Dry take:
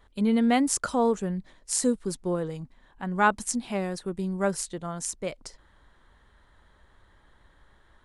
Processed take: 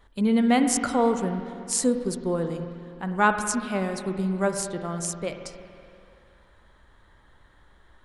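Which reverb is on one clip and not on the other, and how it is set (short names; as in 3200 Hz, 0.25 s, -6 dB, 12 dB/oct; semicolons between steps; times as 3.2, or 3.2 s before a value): spring tank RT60 2.5 s, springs 47/53 ms, chirp 50 ms, DRR 6.5 dB; gain +1.5 dB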